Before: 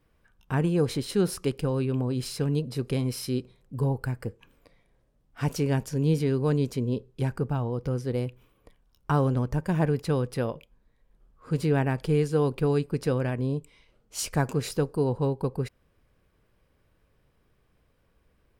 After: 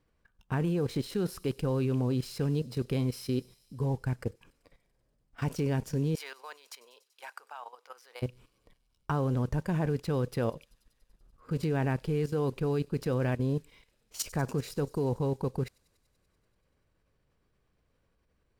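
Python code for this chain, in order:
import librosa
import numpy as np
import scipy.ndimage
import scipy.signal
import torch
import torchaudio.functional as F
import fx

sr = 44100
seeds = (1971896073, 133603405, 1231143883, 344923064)

y = fx.highpass(x, sr, hz=830.0, slope=24, at=(6.15, 8.22))
y = fx.level_steps(y, sr, step_db=15)
y = fx.mod_noise(y, sr, seeds[0], snr_db=34)
y = fx.echo_wet_highpass(y, sr, ms=96, feedback_pct=78, hz=4800.0, wet_db=-17.5)
y = np.interp(np.arange(len(y)), np.arange(len(y))[::2], y[::2])
y = y * 10.0 ** (2.0 / 20.0)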